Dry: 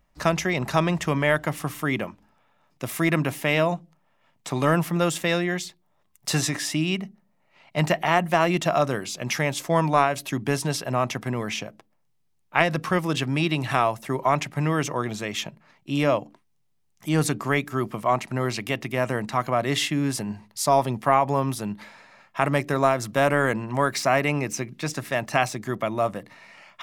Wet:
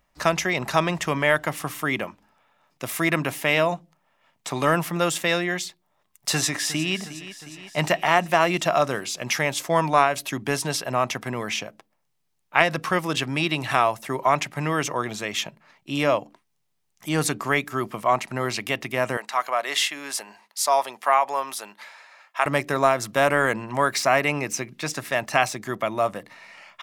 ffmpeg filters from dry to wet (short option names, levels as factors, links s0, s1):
-filter_complex "[0:a]asplit=2[s0][s1];[s1]afade=t=in:st=6.31:d=0.01,afade=t=out:st=6.97:d=0.01,aecho=0:1:360|720|1080|1440|1800|2160|2520:0.199526|0.129692|0.0842998|0.0547949|0.0356167|0.0231508|0.015048[s2];[s0][s2]amix=inputs=2:normalize=0,asettb=1/sr,asplit=3[s3][s4][s5];[s3]atrim=end=19.174[s6];[s4]atrim=start=19.17:end=22.46,asetpts=PTS-STARTPTS,afade=t=in:d=0.004:c=qsin,afade=t=out:st=3.286:d=0.004:c=qsin,highpass=640[s7];[s5]atrim=start=22.456[s8];[s6][s7]acrossfade=d=0.004:c1=hsin:c2=qsin[s9];[s9][s8]acrossfade=d=0.004:c1=qsin:c2=hsin,lowshelf=f=350:g=-8.5,volume=1.41"